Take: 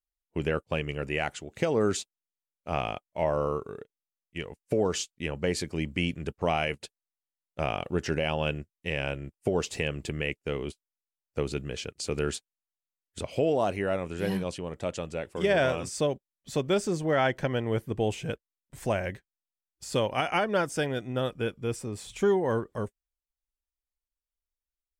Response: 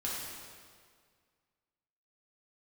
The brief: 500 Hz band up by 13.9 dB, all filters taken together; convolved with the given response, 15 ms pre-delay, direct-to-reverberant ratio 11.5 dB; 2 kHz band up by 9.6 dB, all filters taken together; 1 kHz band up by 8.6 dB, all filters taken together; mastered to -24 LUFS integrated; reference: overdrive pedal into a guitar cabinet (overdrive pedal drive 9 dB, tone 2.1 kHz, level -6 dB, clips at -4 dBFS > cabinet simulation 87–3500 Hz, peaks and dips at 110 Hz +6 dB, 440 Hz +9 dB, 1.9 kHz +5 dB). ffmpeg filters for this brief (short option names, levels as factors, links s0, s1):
-filter_complex "[0:a]equalizer=f=500:t=o:g=8.5,equalizer=f=1000:t=o:g=6,equalizer=f=2000:t=o:g=7,asplit=2[s0][s1];[1:a]atrim=start_sample=2205,adelay=15[s2];[s1][s2]afir=irnorm=-1:irlink=0,volume=0.168[s3];[s0][s3]amix=inputs=2:normalize=0,asplit=2[s4][s5];[s5]highpass=f=720:p=1,volume=2.82,asoftclip=type=tanh:threshold=0.631[s6];[s4][s6]amix=inputs=2:normalize=0,lowpass=f=2100:p=1,volume=0.501,highpass=87,equalizer=f=110:t=q:w=4:g=6,equalizer=f=440:t=q:w=4:g=9,equalizer=f=1900:t=q:w=4:g=5,lowpass=f=3500:w=0.5412,lowpass=f=3500:w=1.3066,volume=0.501"